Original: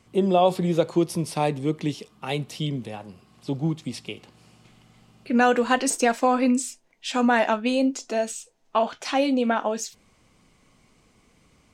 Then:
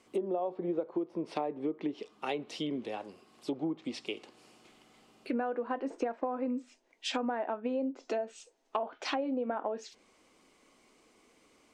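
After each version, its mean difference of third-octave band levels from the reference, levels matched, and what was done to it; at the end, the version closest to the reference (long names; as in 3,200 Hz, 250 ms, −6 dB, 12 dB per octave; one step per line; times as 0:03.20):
7.0 dB: treble cut that deepens with the level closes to 1,200 Hz, closed at −21 dBFS
low shelf with overshoot 210 Hz −14 dB, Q 1.5
downward compressor 16 to 1, threshold −26 dBFS, peak gain reduction 14.5 dB
level −3 dB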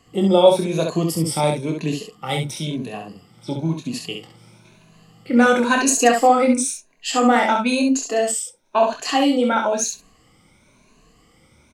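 4.0 dB: rippled gain that drifts along the octave scale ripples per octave 1.5, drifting +0.99 Hz, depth 13 dB
on a send: ambience of single reflections 25 ms −6 dB, 67 ms −4.5 dB
on the sum: dynamic equaliser 9,400 Hz, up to +6 dB, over −45 dBFS, Q 0.77
level +1 dB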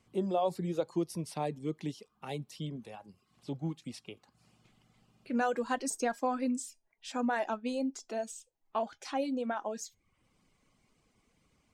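2.5 dB: reverb reduction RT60 0.58 s
dynamic equaliser 2,700 Hz, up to −6 dB, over −42 dBFS, Q 1.2
tuned comb filter 820 Hz, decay 0.19 s, harmonics all, mix 40%
level −6 dB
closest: third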